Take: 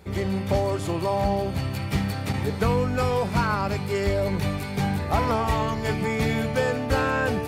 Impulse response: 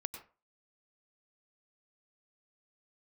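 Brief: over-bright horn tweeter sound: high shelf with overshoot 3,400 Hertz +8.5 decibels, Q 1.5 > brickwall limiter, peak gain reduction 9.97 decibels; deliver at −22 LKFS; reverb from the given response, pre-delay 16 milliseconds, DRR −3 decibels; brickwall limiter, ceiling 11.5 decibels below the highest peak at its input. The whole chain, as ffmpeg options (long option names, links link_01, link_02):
-filter_complex "[0:a]alimiter=limit=-21.5dB:level=0:latency=1,asplit=2[link_01][link_02];[1:a]atrim=start_sample=2205,adelay=16[link_03];[link_02][link_03]afir=irnorm=-1:irlink=0,volume=4dB[link_04];[link_01][link_04]amix=inputs=2:normalize=0,highshelf=frequency=3400:width_type=q:width=1.5:gain=8.5,volume=8.5dB,alimiter=limit=-13.5dB:level=0:latency=1"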